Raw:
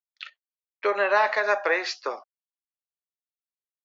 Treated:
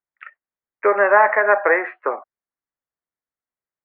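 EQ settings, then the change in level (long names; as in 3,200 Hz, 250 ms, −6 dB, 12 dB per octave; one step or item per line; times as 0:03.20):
Butterworth low-pass 2,100 Hz 48 dB per octave
high-frequency loss of the air 56 metres
+8.0 dB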